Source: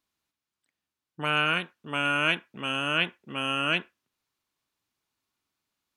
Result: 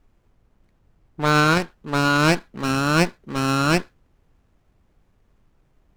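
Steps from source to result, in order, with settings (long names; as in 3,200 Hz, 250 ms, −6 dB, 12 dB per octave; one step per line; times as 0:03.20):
background noise brown −65 dBFS
windowed peak hold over 9 samples
level +7.5 dB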